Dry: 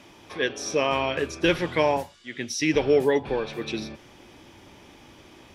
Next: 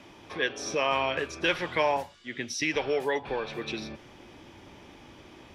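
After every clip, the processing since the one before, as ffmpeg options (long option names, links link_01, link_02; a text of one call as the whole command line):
ffmpeg -i in.wav -filter_complex "[0:a]highshelf=frequency=6200:gain=-8.5,acrossover=split=600|5400[link_01][link_02][link_03];[link_01]acompressor=threshold=-34dB:ratio=6[link_04];[link_04][link_02][link_03]amix=inputs=3:normalize=0" out.wav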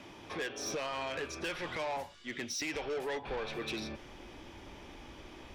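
ffmpeg -i in.wav -af "asubboost=boost=5:cutoff=51,alimiter=limit=-21.5dB:level=0:latency=1:release=259,asoftclip=type=tanh:threshold=-32dB" out.wav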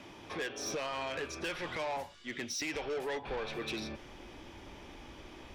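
ffmpeg -i in.wav -af anull out.wav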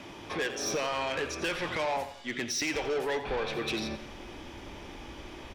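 ffmpeg -i in.wav -af "aecho=1:1:87|174|261|348:0.237|0.0996|0.0418|0.0176,volume=5.5dB" out.wav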